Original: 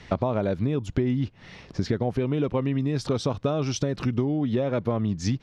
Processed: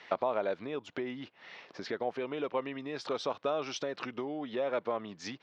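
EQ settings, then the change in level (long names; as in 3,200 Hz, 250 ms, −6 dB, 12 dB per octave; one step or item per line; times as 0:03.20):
band-pass filter 560–3,900 Hz
−1.5 dB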